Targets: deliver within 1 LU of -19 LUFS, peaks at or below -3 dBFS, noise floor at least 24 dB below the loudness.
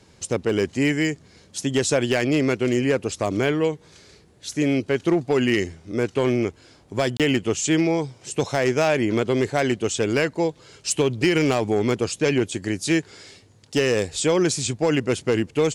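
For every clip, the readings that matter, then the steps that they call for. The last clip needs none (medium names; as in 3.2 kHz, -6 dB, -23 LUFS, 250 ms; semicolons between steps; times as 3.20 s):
clipped samples 0.6%; clipping level -12.0 dBFS; dropouts 1; longest dropout 27 ms; loudness -22.5 LUFS; peak level -12.0 dBFS; loudness target -19.0 LUFS
-> clip repair -12 dBFS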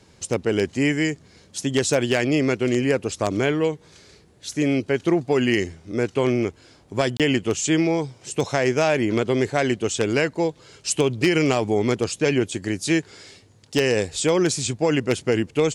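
clipped samples 0.0%; dropouts 1; longest dropout 27 ms
-> interpolate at 7.17 s, 27 ms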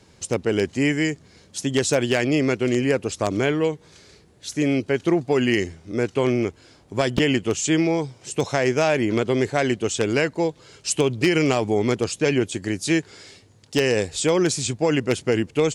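dropouts 0; loudness -22.5 LUFS; peak level -3.0 dBFS; loudness target -19.0 LUFS
-> trim +3.5 dB; peak limiter -3 dBFS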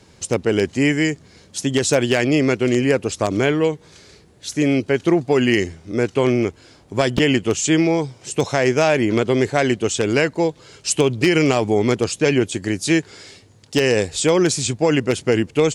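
loudness -19.0 LUFS; peak level -3.0 dBFS; noise floor -50 dBFS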